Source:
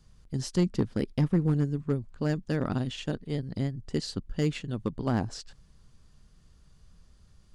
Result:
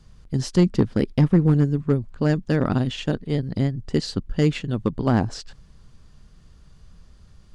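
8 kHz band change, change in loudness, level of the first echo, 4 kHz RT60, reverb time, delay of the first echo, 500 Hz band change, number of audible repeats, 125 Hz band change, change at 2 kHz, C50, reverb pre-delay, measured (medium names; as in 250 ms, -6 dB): +4.0 dB, +8.0 dB, no echo, no reverb, no reverb, no echo, +8.0 dB, no echo, +8.0 dB, +7.5 dB, no reverb, no reverb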